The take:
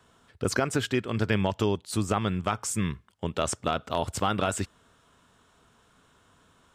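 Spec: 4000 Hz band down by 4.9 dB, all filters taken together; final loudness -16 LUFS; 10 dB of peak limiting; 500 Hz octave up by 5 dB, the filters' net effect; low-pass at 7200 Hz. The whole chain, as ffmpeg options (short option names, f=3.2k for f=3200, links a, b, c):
-af "lowpass=7.2k,equalizer=f=500:t=o:g=6.5,equalizer=f=4k:t=o:g=-6.5,volume=16dB,alimiter=limit=-2.5dB:level=0:latency=1"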